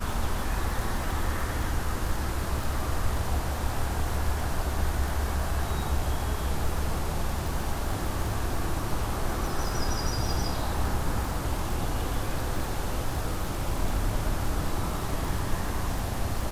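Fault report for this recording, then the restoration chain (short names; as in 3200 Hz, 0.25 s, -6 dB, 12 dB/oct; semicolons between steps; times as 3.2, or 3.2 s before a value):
crackle 31/s -30 dBFS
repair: de-click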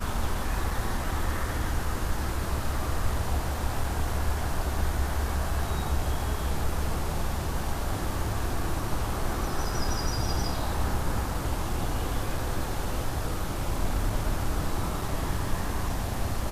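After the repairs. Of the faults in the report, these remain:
none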